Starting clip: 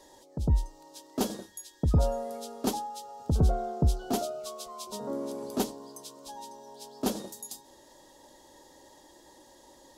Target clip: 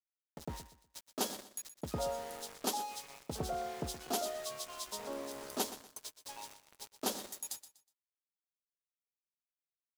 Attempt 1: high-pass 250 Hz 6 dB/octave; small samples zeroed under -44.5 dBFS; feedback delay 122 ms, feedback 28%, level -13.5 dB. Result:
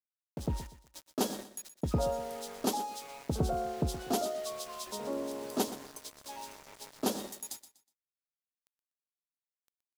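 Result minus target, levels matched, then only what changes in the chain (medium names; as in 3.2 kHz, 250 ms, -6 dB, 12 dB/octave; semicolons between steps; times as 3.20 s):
250 Hz band +4.5 dB
change: high-pass 930 Hz 6 dB/octave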